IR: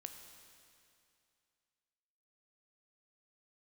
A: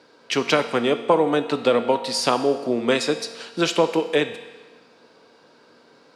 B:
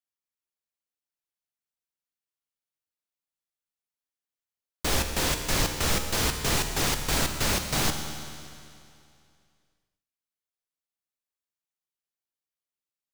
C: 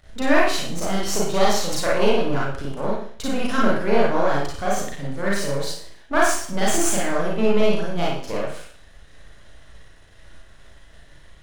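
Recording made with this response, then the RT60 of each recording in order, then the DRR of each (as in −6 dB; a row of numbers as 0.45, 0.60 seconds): B; 1.3, 2.5, 0.50 seconds; 8.5, 5.0, −5.5 decibels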